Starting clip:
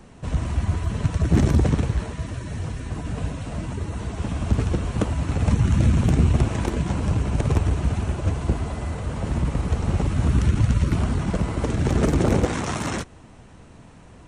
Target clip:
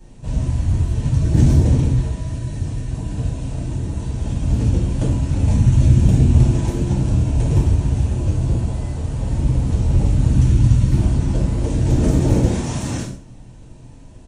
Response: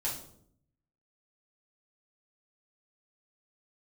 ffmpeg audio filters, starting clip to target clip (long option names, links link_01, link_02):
-filter_complex "[0:a]equalizer=frequency=1300:width_type=o:width=2.2:gain=-10.5,aecho=1:1:63|126|189|252:0.188|0.0735|0.0287|0.0112[link_01];[1:a]atrim=start_sample=2205,afade=type=out:start_time=0.22:duration=0.01,atrim=end_sample=10143[link_02];[link_01][link_02]afir=irnorm=-1:irlink=0"